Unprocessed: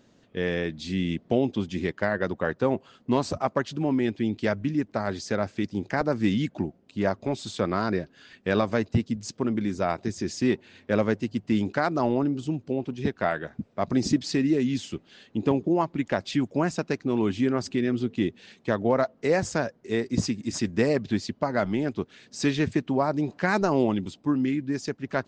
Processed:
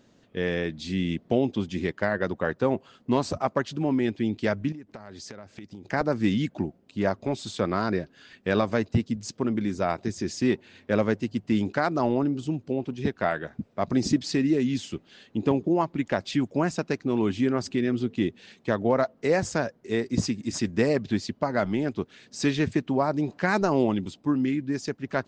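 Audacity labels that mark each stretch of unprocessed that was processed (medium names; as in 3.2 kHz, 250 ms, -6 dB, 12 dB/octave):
4.720000	5.850000	compression 20:1, threshold -37 dBFS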